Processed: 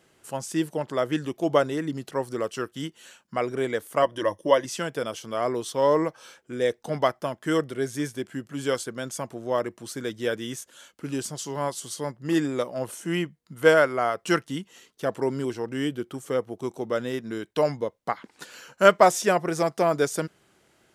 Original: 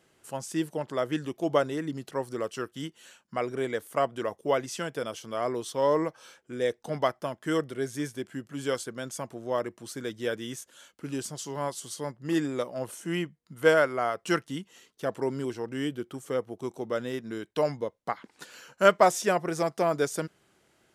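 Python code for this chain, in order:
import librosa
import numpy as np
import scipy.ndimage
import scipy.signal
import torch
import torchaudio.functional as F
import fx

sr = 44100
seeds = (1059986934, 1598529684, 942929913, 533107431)

y = fx.ripple_eq(x, sr, per_octave=1.2, db=12, at=(4.02, 4.65))
y = y * librosa.db_to_amplitude(3.5)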